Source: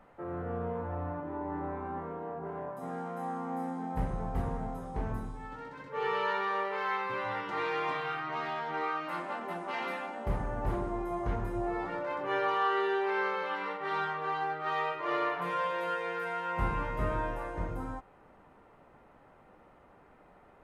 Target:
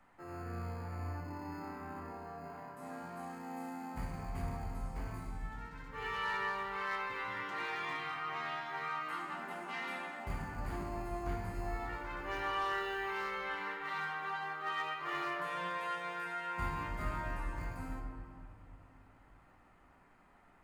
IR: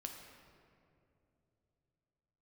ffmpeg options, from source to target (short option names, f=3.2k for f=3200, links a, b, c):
-filter_complex "[0:a]equalizer=f=125:t=o:w=1:g=-3,equalizer=f=500:t=o:w=1:g=-9,equalizer=f=2k:t=o:w=1:g=3,equalizer=f=8k:t=o:w=1:g=7,acrossover=split=340|870[a][b][c];[a]acrusher=samples=19:mix=1:aa=0.000001[d];[c]volume=28dB,asoftclip=hard,volume=-28dB[e];[d][b][e]amix=inputs=3:normalize=0[f];[1:a]atrim=start_sample=2205[g];[f][g]afir=irnorm=-1:irlink=0,volume=-1dB"